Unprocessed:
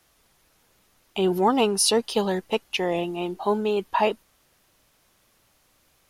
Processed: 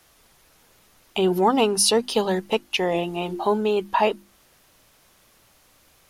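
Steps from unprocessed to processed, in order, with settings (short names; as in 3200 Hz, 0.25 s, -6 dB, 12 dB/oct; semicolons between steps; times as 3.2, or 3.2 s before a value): notches 50/100/150/200/250/300/350 Hz; in parallel at 0 dB: compressor, threshold -32 dBFS, peak gain reduction 15.5 dB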